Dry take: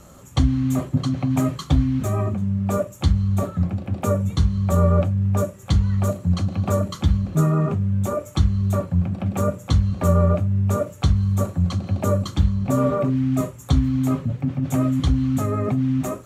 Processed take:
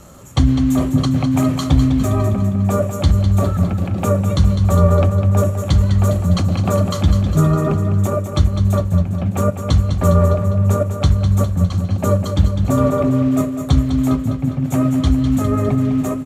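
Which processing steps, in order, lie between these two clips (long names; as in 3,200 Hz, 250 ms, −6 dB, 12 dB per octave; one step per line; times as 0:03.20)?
transient designer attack 0 dB, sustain +5 dB, from 0:08.06 sustain −5 dB
repeating echo 203 ms, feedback 55%, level −8.5 dB
level +4 dB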